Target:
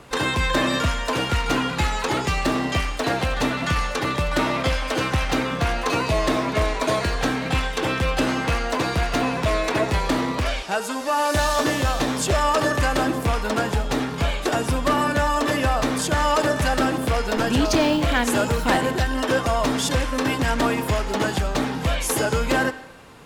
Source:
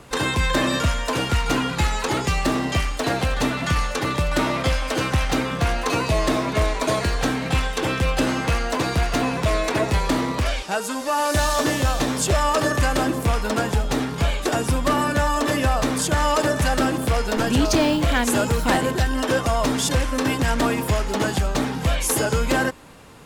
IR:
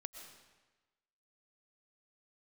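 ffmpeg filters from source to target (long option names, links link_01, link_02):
-filter_complex "[0:a]asplit=2[link_01][link_02];[link_02]highpass=frequency=320:poles=1[link_03];[1:a]atrim=start_sample=2205,asetrate=61740,aresample=44100,lowpass=6000[link_04];[link_03][link_04]afir=irnorm=-1:irlink=0,volume=0.5dB[link_05];[link_01][link_05]amix=inputs=2:normalize=0,volume=-2.5dB"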